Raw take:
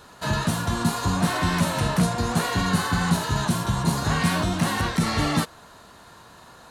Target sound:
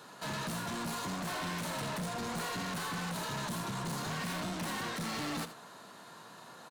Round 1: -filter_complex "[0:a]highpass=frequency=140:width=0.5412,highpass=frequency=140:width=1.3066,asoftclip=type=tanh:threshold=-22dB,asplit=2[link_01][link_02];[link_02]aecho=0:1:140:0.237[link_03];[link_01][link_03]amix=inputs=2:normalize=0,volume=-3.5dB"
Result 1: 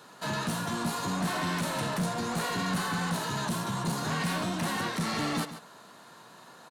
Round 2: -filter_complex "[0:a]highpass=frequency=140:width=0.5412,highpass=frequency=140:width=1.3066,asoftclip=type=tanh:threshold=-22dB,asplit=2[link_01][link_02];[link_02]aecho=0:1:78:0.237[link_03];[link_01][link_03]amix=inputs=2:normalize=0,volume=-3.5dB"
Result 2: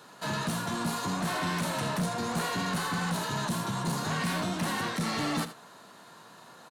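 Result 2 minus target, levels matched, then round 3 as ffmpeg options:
soft clipping: distortion −6 dB
-filter_complex "[0:a]highpass=frequency=140:width=0.5412,highpass=frequency=140:width=1.3066,asoftclip=type=tanh:threshold=-32dB,asplit=2[link_01][link_02];[link_02]aecho=0:1:78:0.237[link_03];[link_01][link_03]amix=inputs=2:normalize=0,volume=-3.5dB"

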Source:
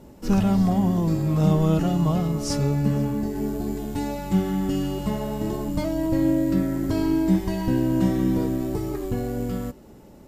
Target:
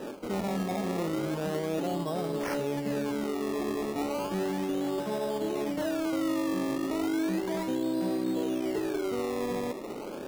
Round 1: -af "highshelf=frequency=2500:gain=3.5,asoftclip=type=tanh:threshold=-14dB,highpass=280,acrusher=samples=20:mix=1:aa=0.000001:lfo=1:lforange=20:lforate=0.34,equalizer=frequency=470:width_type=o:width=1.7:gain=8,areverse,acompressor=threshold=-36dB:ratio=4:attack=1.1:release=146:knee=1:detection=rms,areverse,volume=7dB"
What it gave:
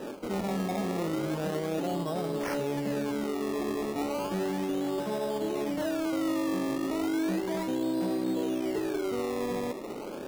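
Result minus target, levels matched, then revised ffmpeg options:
soft clipping: distortion +18 dB
-af "highshelf=frequency=2500:gain=3.5,asoftclip=type=tanh:threshold=-3.5dB,highpass=280,acrusher=samples=20:mix=1:aa=0.000001:lfo=1:lforange=20:lforate=0.34,equalizer=frequency=470:width_type=o:width=1.7:gain=8,areverse,acompressor=threshold=-36dB:ratio=4:attack=1.1:release=146:knee=1:detection=rms,areverse,volume=7dB"

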